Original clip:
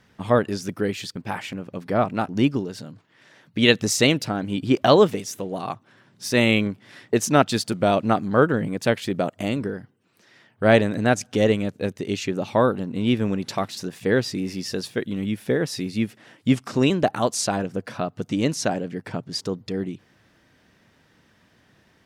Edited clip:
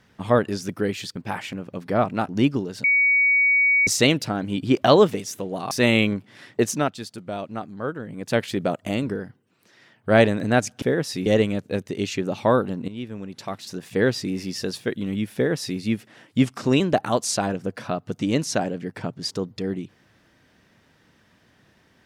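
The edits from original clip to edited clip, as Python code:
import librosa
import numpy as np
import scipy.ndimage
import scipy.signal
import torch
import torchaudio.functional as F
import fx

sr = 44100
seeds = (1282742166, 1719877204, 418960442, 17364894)

y = fx.edit(x, sr, fx.bleep(start_s=2.84, length_s=1.03, hz=2250.0, db=-15.0),
    fx.cut(start_s=5.71, length_s=0.54),
    fx.fade_down_up(start_s=7.15, length_s=1.8, db=-11.5, fade_s=0.32),
    fx.fade_in_from(start_s=12.98, length_s=1.05, curve='qua', floor_db=-13.0),
    fx.duplicate(start_s=15.45, length_s=0.44, to_s=11.36), tone=tone)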